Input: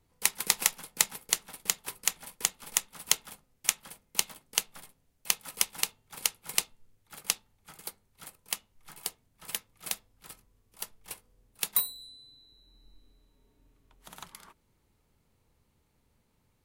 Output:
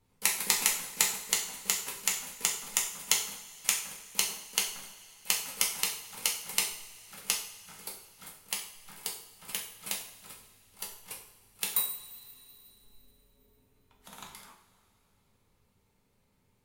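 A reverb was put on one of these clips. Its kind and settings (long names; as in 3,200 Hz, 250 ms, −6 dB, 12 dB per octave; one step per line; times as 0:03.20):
coupled-rooms reverb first 0.54 s, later 3.2 s, from −19 dB, DRR −1.5 dB
level −3 dB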